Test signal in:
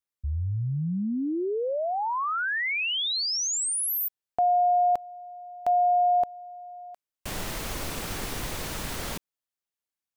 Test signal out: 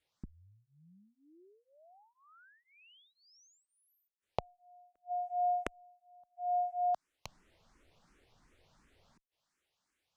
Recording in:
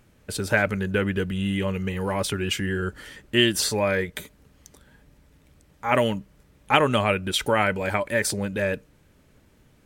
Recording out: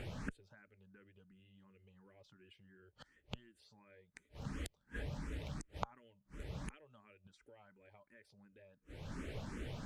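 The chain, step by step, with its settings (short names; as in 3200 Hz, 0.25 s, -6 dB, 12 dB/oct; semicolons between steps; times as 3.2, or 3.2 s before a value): compressor 2.5:1, threshold -45 dBFS; flipped gate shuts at -41 dBFS, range -37 dB; air absorption 69 m; endless phaser +2.8 Hz; gain +16 dB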